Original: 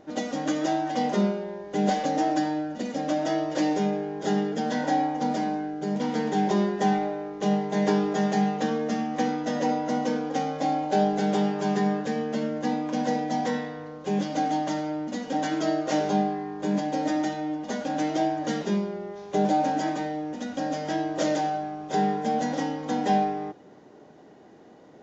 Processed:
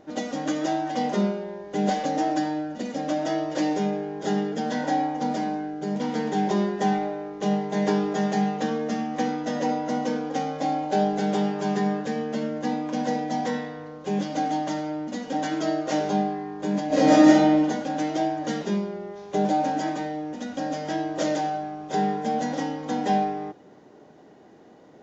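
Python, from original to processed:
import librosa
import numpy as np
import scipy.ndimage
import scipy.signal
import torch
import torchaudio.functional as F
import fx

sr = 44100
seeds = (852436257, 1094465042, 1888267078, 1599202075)

y = fx.reverb_throw(x, sr, start_s=16.87, length_s=0.76, rt60_s=0.86, drr_db=-11.5)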